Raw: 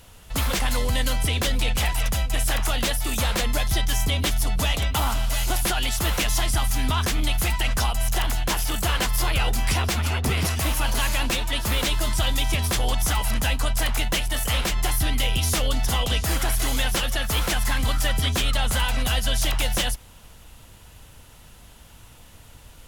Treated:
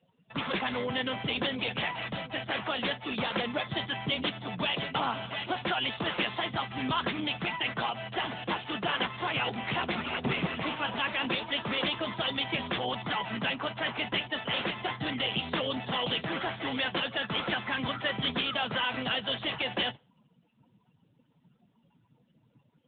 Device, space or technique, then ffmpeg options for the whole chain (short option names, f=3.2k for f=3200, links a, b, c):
mobile call with aggressive noise cancelling: -af "highpass=f=140:w=0.5412,highpass=f=140:w=1.3066,afftdn=nr=27:nf=-45,volume=-1.5dB" -ar 8000 -c:a libopencore_amrnb -b:a 10200